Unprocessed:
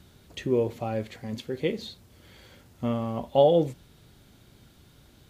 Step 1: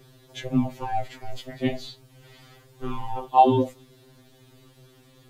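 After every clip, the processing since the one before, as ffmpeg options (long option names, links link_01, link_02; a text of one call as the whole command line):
ffmpeg -i in.wav -af "aeval=exprs='val(0)*sin(2*PI*220*n/s)':channel_layout=same,afftfilt=real='re*2.45*eq(mod(b,6),0)':imag='im*2.45*eq(mod(b,6),0)':win_size=2048:overlap=0.75,volume=6.5dB" out.wav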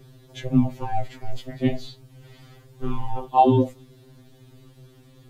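ffmpeg -i in.wav -af "lowshelf=frequency=320:gain=9,volume=-2dB" out.wav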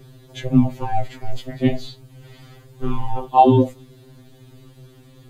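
ffmpeg -i in.wav -af "bandreject=frequency=5500:width=14,volume=4dB" out.wav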